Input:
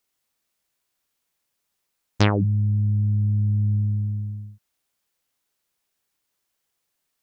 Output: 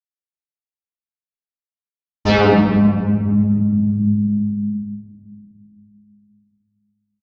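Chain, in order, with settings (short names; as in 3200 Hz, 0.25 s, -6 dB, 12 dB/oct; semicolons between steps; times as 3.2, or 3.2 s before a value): gate -30 dBFS, range -36 dB; comb 4.6 ms, depth 82%; step gate ".xxx..xxxxx.xx.x" 155 bpm; reverb RT60 2.2 s, pre-delay 46 ms, DRR -60 dB; gain -10.5 dB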